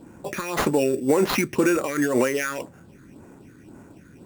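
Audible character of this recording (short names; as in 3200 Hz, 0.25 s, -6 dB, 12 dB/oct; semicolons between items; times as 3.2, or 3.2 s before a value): phasing stages 6, 1.9 Hz, lowest notch 740–4700 Hz; aliases and images of a low sample rate 8200 Hz, jitter 0%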